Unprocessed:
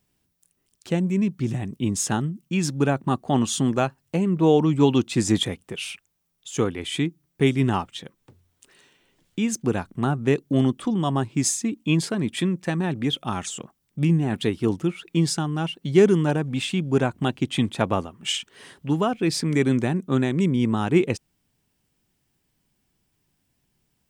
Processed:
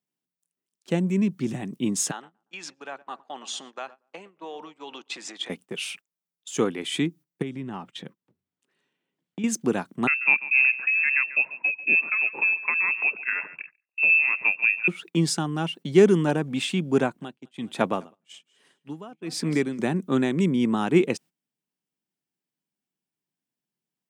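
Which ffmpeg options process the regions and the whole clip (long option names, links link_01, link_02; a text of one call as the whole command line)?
ffmpeg -i in.wav -filter_complex "[0:a]asettb=1/sr,asplit=3[link_01][link_02][link_03];[link_01]atrim=end=2.114[link_04];[link_02]atrim=start=2.11:end=5.5,asetpts=PTS-STARTPTS,afade=type=in:duration=0.004:curve=qsin,afade=type=out:start_time=3.386:duration=0.004:curve=qsin,acompressor=threshold=-24dB:ratio=8:attack=3.2:release=140:knee=1:detection=peak,highpass=750,lowpass=5100,asplit=2[link_05][link_06];[link_06]adelay=117,lowpass=frequency=1600:poles=1,volume=-15.5dB,asplit=2[link_07][link_08];[link_08]adelay=117,lowpass=frequency=1600:poles=1,volume=0.55,asplit=2[link_09][link_10];[link_10]adelay=117,lowpass=frequency=1600:poles=1,volume=0.55,asplit=2[link_11][link_12];[link_12]adelay=117,lowpass=frequency=1600:poles=1,volume=0.55,asplit=2[link_13][link_14];[link_14]adelay=117,lowpass=frequency=1600:poles=1,volume=0.55[link_15];[link_05][link_07][link_09][link_11][link_13][link_15]amix=inputs=6:normalize=0,atrim=end_sample=149499[link_16];[link_03]atrim=start=5.496[link_17];[link_04][link_16]acrossfade=duration=0.004:curve1=hsin:curve2=qsin[link_18];[link_18][link_17]acrossfade=duration=0.004:curve1=qsin:curve2=hsin,asettb=1/sr,asplit=3[link_19][link_20][link_21];[link_19]atrim=end=7.424[link_22];[link_20]atrim=start=7.42:end=9.44,asetpts=PTS-STARTPTS,afade=type=in:duration=0.004:curve=qsin,afade=type=out:start_time=2.016:duration=0.004:curve=qsin,bass=frequency=250:gain=6,treble=frequency=4000:gain=-8,acompressor=threshold=-30dB:ratio=4:attack=3.2:release=140:knee=1:detection=peak[link_23];[link_21]atrim=start=9.436[link_24];[link_22][link_23]acrossfade=duration=0.004:curve1=hsin:curve2=qsin[link_25];[link_25][link_24]acrossfade=duration=0.004:curve1=qsin:curve2=hsin,asettb=1/sr,asplit=3[link_26][link_27][link_28];[link_26]atrim=end=10.074[link_29];[link_27]atrim=start=10.07:end=14.88,asetpts=PTS-STARTPTS,afade=type=in:duration=0.004:curve=qsin,afade=type=out:start_time=4.806:duration=0.004:curve=qsin,lowpass=frequency=2400:width_type=q:width=0.5098,lowpass=frequency=2400:width_type=q:width=0.6013,lowpass=frequency=2400:width_type=q:width=0.9,lowpass=frequency=2400:width_type=q:width=2.563,afreqshift=-2800,aecho=1:1:141:0.168,atrim=end_sample=212121[link_30];[link_28]atrim=start=14.876[link_31];[link_29][link_30]acrossfade=duration=0.004:curve1=hsin:curve2=qsin[link_32];[link_32][link_31]acrossfade=duration=0.004:curve1=qsin:curve2=hsin,asettb=1/sr,asplit=3[link_33][link_34][link_35];[link_33]atrim=end=17.004[link_36];[link_34]atrim=start=17:end=19.79,asetpts=PTS-STARTPTS,afade=type=in:duration=0.004:curve=qsin,afade=type=out:start_time=2.786:duration=0.004:curve=qsin,aecho=1:1:205|410:0.106|0.0318,atrim=end_sample=123039,aeval=exprs='val(0)*pow(10,-19*(0.5-0.5*cos(2*PI*1.2*n/s))/20)':channel_layout=same[link_37];[link_35]atrim=start=19.786[link_38];[link_36][link_37]acrossfade=duration=0.004:curve1=hsin:curve2=qsin[link_39];[link_39][link_38]acrossfade=duration=0.004:curve1=qsin:curve2=hsin,agate=range=-17dB:threshold=-42dB:ratio=16:detection=peak,highpass=frequency=160:width=0.5412,highpass=frequency=160:width=1.3066" out.wav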